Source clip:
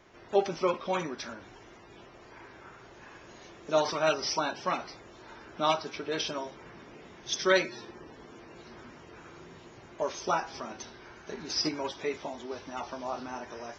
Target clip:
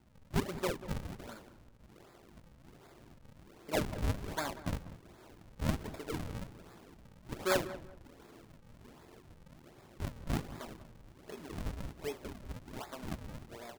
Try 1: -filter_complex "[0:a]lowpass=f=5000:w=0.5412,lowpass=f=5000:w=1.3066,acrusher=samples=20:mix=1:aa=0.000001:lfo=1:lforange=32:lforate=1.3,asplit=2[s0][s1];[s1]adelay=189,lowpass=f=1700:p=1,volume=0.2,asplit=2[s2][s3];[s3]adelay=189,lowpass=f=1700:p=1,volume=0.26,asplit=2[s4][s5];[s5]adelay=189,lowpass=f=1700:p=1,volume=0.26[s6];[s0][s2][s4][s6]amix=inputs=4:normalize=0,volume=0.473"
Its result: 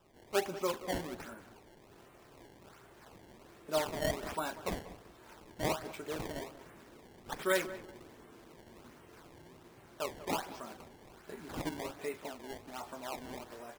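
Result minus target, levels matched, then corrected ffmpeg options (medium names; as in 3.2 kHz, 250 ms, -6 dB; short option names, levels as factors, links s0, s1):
decimation with a swept rate: distortion -13 dB
-filter_complex "[0:a]lowpass=f=5000:w=0.5412,lowpass=f=5000:w=1.3066,acrusher=samples=72:mix=1:aa=0.000001:lfo=1:lforange=115:lforate=1.3,asplit=2[s0][s1];[s1]adelay=189,lowpass=f=1700:p=1,volume=0.2,asplit=2[s2][s3];[s3]adelay=189,lowpass=f=1700:p=1,volume=0.26,asplit=2[s4][s5];[s5]adelay=189,lowpass=f=1700:p=1,volume=0.26[s6];[s0][s2][s4][s6]amix=inputs=4:normalize=0,volume=0.473"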